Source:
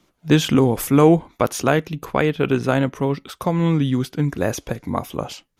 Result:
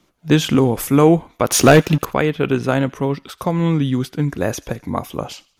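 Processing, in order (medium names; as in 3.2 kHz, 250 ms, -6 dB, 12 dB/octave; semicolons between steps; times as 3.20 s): 1.50–2.05 s: waveshaping leveller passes 3; feedback echo behind a high-pass 85 ms, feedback 42%, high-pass 1.4 kHz, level -22 dB; trim +1 dB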